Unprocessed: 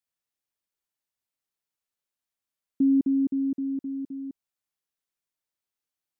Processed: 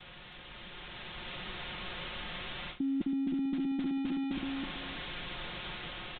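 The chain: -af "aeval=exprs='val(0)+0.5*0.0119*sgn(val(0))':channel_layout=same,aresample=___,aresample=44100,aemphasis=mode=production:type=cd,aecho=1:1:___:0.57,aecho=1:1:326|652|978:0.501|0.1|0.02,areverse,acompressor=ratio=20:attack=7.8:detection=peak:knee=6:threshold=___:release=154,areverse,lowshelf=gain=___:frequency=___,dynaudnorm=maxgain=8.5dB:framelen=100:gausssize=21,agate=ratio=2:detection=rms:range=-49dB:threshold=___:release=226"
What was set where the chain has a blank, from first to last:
8000, 5.6, -41dB, 12, 140, -51dB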